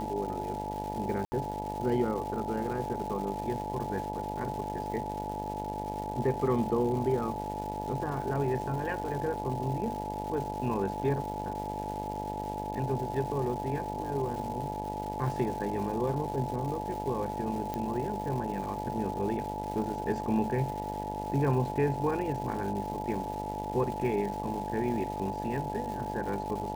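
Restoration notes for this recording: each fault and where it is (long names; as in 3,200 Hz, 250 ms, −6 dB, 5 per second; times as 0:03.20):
mains buzz 50 Hz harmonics 19 −38 dBFS
surface crackle 470 per second −39 dBFS
whistle 860 Hz −36 dBFS
0:01.25–0:01.32: drop-out 70 ms
0:17.74: click −20 dBFS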